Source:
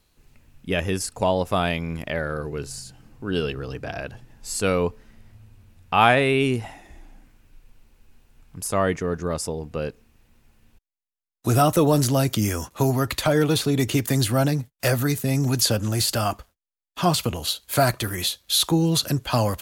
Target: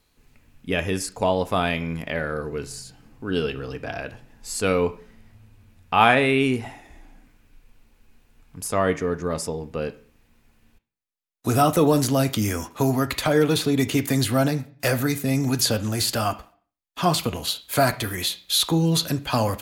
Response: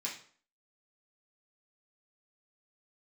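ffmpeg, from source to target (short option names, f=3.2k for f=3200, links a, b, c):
-filter_complex "[0:a]asplit=2[a][b];[1:a]atrim=start_sample=2205,lowpass=3.5k[c];[b][c]afir=irnorm=-1:irlink=0,volume=-8dB[d];[a][d]amix=inputs=2:normalize=0,volume=-1dB"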